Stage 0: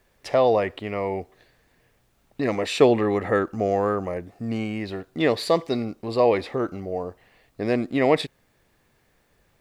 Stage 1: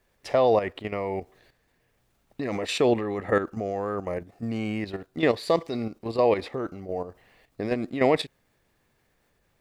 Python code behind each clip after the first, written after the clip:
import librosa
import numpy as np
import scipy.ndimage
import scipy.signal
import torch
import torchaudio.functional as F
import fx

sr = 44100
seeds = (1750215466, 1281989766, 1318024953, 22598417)

y = fx.level_steps(x, sr, step_db=10)
y = F.gain(torch.from_numpy(y), 1.0).numpy()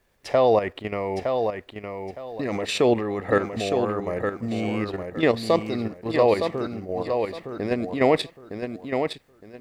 y = fx.echo_feedback(x, sr, ms=913, feedback_pct=25, wet_db=-6)
y = F.gain(torch.from_numpy(y), 2.0).numpy()